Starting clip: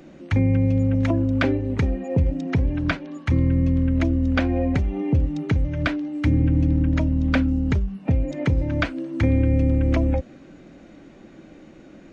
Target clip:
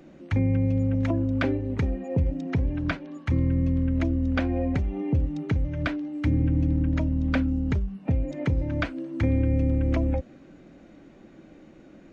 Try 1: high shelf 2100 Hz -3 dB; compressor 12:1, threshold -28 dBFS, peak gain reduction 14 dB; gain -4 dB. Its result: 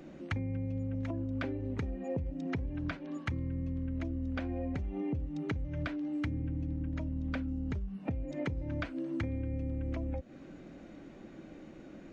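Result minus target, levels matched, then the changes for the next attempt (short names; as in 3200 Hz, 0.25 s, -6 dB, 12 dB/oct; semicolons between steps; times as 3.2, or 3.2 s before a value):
compressor: peak gain reduction +14 dB
remove: compressor 12:1, threshold -28 dBFS, peak gain reduction 14 dB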